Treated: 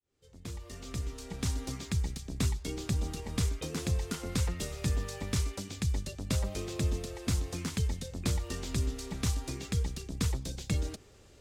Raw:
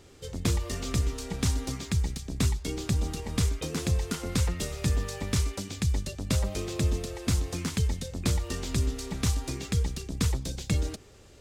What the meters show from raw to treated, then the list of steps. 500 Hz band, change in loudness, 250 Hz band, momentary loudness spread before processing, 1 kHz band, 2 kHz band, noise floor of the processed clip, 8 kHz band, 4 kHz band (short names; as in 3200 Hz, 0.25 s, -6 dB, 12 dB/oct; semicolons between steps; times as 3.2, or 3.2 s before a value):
-4.5 dB, -4.5 dB, -4.5 dB, 3 LU, -4.5 dB, -4.5 dB, -57 dBFS, -4.5 dB, -4.5 dB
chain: opening faded in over 1.78 s; gain -4 dB